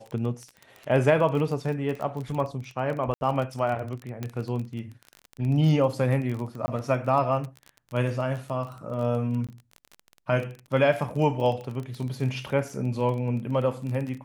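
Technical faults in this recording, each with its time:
crackle 24 per s -31 dBFS
3.14–3.21 s: dropout 71 ms
4.23 s: pop -18 dBFS
6.66–6.68 s: dropout 20 ms
9.47–9.49 s: dropout 17 ms

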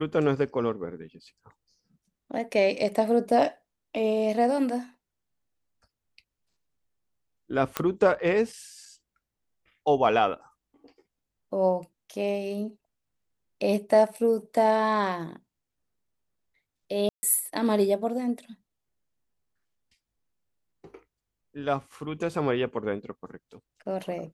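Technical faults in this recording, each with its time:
7.77 s: pop -10 dBFS
17.09–17.23 s: dropout 140 ms

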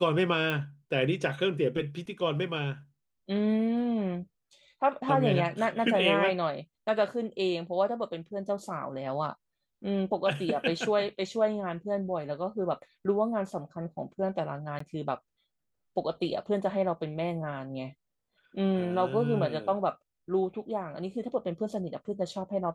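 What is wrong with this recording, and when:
0.50 s: pop -18 dBFS
14.79–14.80 s: dropout 14 ms

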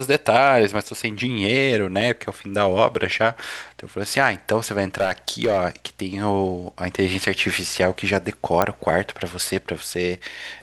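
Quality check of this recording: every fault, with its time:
2.01–2.02 s: dropout 5 ms
4.95–5.65 s: clipped -14 dBFS
8.62 s: pop -5 dBFS

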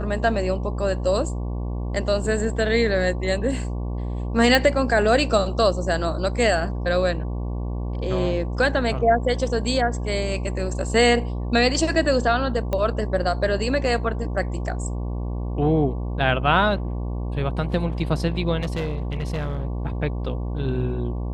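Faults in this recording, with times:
buzz 60 Hz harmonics 19 -27 dBFS
4.55 s: pop -5 dBFS
12.73 s: pop -13 dBFS
18.61–19.63 s: clipped -22 dBFS

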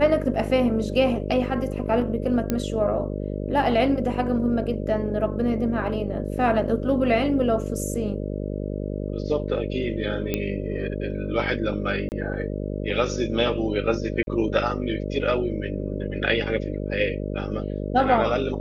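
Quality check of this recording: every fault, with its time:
buzz 50 Hz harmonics 12 -29 dBFS
2.50 s: pop -10 dBFS
10.34 s: pop -10 dBFS
12.09–12.12 s: dropout 29 ms
14.23–14.27 s: dropout 41 ms

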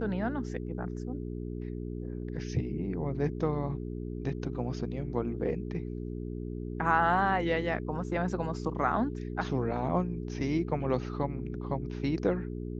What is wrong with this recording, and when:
hum 60 Hz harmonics 7 -37 dBFS

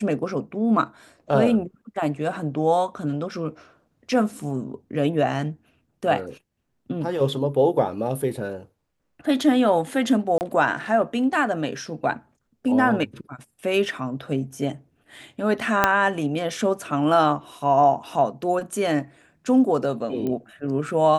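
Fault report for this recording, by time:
10.38–10.41 s: dropout 29 ms
15.84 s: pop -2 dBFS
20.27 s: pop -17 dBFS

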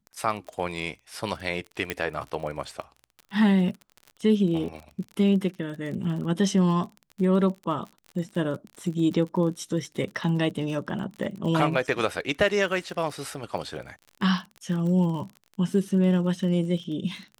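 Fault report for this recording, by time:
crackle 37 per s -34 dBFS
1.90 s: pop -12 dBFS

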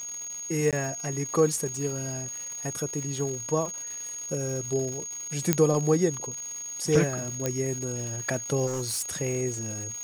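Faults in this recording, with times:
crackle 360 per s -35 dBFS
whine 6.6 kHz -34 dBFS
0.71–0.73 s: dropout 17 ms
5.53 s: pop -5 dBFS
7.46 s: pop -12 dBFS
8.66–9.11 s: clipped -26.5 dBFS

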